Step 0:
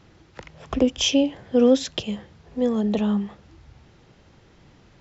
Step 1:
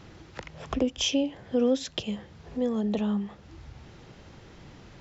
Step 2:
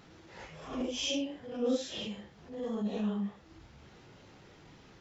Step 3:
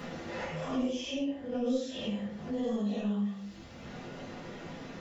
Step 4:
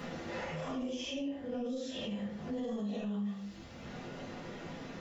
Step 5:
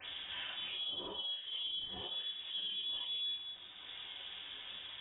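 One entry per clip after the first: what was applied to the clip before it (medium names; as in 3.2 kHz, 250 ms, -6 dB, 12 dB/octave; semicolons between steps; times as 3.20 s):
compression 1.5:1, threshold -47 dBFS, peak gain reduction 12.5 dB; trim +4.5 dB
phase randomisation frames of 200 ms; bass shelf 100 Hz -8.5 dB; transient shaper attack -7 dB, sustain -1 dB; trim -4 dB
gain riding within 4 dB 0.5 s; reverberation RT60 0.40 s, pre-delay 4 ms, DRR -6 dB; three bands compressed up and down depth 70%; trim -7 dB
peak limiter -29.5 dBFS, peak gain reduction 9.5 dB; trim -1 dB
rattle on loud lows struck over -48 dBFS, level -52 dBFS; phase dispersion lows, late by 45 ms, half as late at 500 Hz; frequency inversion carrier 3.6 kHz; trim -3.5 dB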